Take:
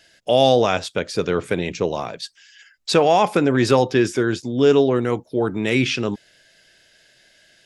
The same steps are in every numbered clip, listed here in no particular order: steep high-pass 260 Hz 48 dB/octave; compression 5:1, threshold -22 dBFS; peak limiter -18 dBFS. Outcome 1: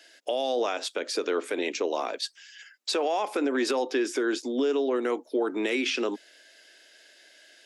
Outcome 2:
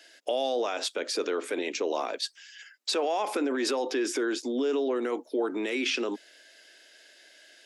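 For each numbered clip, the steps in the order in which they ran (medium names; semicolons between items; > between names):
steep high-pass > compression > peak limiter; peak limiter > steep high-pass > compression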